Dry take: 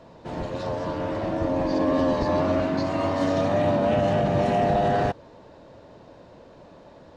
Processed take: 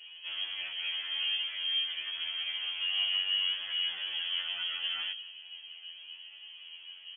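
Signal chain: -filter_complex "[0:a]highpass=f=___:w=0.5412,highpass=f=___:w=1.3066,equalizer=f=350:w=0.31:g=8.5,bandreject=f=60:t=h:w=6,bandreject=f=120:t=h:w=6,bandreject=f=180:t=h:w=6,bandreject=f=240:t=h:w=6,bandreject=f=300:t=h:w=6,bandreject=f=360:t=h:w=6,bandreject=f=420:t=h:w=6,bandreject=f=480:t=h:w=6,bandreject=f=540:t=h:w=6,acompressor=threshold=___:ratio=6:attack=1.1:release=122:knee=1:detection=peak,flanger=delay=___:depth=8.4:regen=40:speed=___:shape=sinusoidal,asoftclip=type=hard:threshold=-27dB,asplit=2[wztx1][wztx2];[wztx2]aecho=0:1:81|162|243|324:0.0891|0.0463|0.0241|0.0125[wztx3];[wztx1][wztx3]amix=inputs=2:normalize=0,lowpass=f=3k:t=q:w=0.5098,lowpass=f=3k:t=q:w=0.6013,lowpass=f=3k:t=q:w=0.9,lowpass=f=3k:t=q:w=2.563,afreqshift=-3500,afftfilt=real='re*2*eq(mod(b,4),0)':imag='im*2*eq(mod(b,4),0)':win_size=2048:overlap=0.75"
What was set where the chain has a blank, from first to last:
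200, 200, -21dB, 6.8, 0.39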